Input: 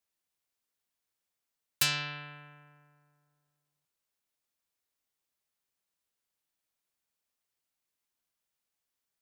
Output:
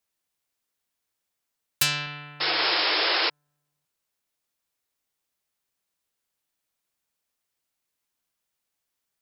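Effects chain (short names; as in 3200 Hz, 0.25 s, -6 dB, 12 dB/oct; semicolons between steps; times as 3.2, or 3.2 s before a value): 2.4–3.3 painted sound noise 300–5400 Hz -28 dBFS; 2.06–2.6 notch comb 200 Hz; gain +4.5 dB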